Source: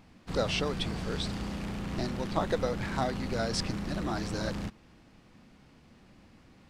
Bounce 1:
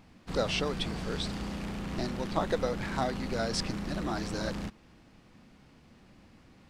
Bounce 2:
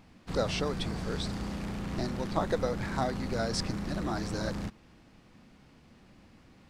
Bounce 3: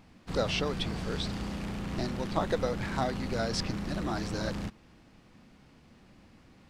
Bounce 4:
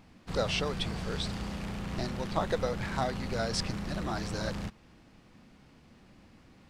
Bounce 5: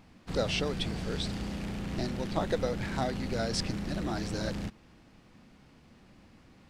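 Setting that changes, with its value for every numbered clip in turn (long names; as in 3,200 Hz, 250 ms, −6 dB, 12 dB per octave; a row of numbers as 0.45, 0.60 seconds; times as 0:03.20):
dynamic equaliser, frequency: 100, 2,900, 8,800, 290, 1,100 Hertz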